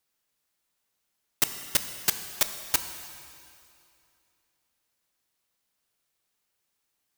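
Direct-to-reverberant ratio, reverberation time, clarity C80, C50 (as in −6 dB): 8.0 dB, 2.6 s, 9.5 dB, 9.0 dB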